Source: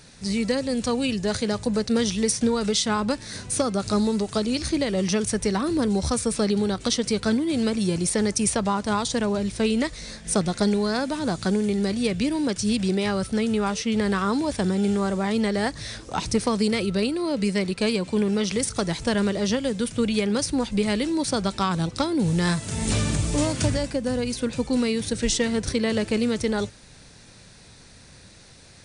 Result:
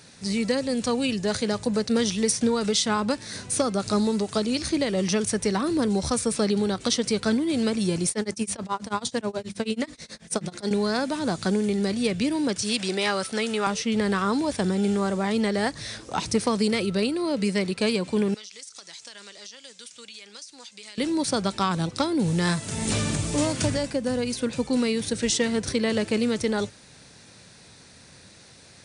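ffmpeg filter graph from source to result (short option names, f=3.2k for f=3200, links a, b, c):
-filter_complex "[0:a]asettb=1/sr,asplit=3[a][b][c];[a]atrim=end=8.094[d];[b]atrim=start=8.09:end=10.71,asetpts=PTS-STARTPTS,afade=t=in:d=0.004:c=qsin,afade=t=out:st=2.616:d=0.004:c=qsin,highpass=52,bandreject=f=50:t=h:w=6,bandreject=f=100:t=h:w=6,bandreject=f=150:t=h:w=6,bandreject=f=200:t=h:w=6,bandreject=f=250:t=h:w=6,bandreject=f=300:t=h:w=6,bandreject=f=350:t=h:w=6,tremolo=f=9.3:d=0.97[e];[c]atrim=start=10.706[f];[d][e]acrossfade=d=0.004:c1=hsin:c2=qsin[g];[g][f]acrossfade=d=0.004:c1=qsin:c2=hsin,asettb=1/sr,asplit=3[h][i][j];[h]atrim=end=12.624[k];[i]atrim=start=12.62:end=13.67,asetpts=PTS-STARTPTS,afade=t=in:d=0.004:c=qsin,afade=t=out:st=1.046:d=0.004:c=qsin,highpass=f=790:p=1,highshelf=f=9.1k:g=-3,acontrast=37[l];[j]atrim=start=13.666[m];[k][l]acrossfade=d=0.004:c1=hsin:c2=qsin[n];[n][m]acrossfade=d=0.004:c1=qsin:c2=hsin,asettb=1/sr,asplit=3[o][p][q];[o]atrim=end=18.344[r];[p]atrim=start=18.34:end=20.98,asetpts=PTS-STARTPTS,afade=t=in:d=0.004:c=qsin,afade=t=out:st=2.636:d=0.004:c=qsin,lowpass=f=7.4k:w=0.5412,lowpass=f=7.4k:w=1.3066,aderivative,acompressor=threshold=-37dB:ratio=12:attack=3.2:release=140:knee=1:detection=peak[s];[q]atrim=start=20.976[t];[r][s]acrossfade=d=0.004:c1=hsin:c2=qsin[u];[u][t]acrossfade=d=0.004:c1=qsin:c2=hsin,highpass=51,lowshelf=f=67:g=-11.5"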